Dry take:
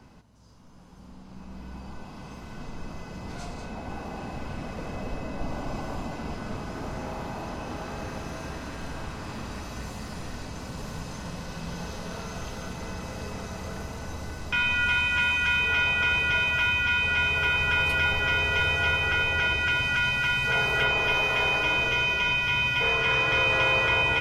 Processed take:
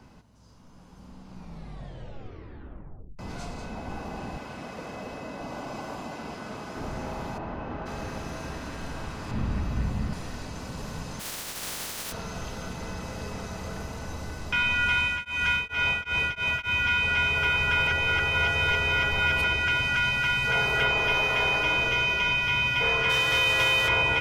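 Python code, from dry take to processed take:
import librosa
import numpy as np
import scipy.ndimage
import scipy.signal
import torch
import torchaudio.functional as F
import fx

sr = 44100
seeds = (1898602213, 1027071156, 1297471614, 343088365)

y = fx.highpass(x, sr, hz=270.0, slope=6, at=(4.37, 6.77))
y = fx.lowpass(y, sr, hz=2200.0, slope=12, at=(7.37, 7.85), fade=0.02)
y = fx.bass_treble(y, sr, bass_db=11, treble_db=-8, at=(9.31, 10.13))
y = fx.spec_flatten(y, sr, power=0.14, at=(11.19, 12.11), fade=0.02)
y = fx.tremolo_abs(y, sr, hz=fx.line((14.94, 1.8), (16.77, 4.2)), at=(14.94, 16.77), fade=0.02)
y = fx.envelope_flatten(y, sr, power=0.6, at=(23.09, 23.87), fade=0.02)
y = fx.edit(y, sr, fx.tape_stop(start_s=1.32, length_s=1.87),
    fx.reverse_span(start_s=17.87, length_s=1.57), tone=tone)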